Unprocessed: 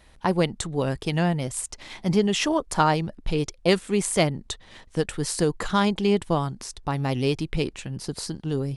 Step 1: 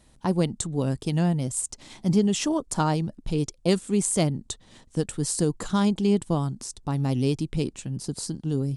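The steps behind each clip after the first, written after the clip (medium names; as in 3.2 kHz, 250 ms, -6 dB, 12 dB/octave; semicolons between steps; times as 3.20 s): graphic EQ 125/250/2000/8000 Hz +6/+7/-5/+9 dB; trim -5.5 dB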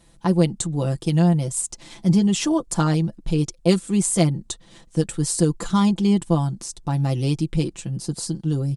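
comb 5.9 ms, depth 72%; trim +1.5 dB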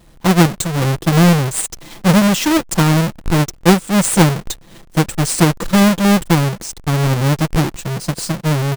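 square wave that keeps the level; trim +2.5 dB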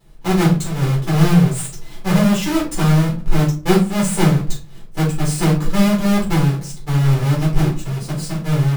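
simulated room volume 190 m³, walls furnished, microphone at 4.1 m; trim -13.5 dB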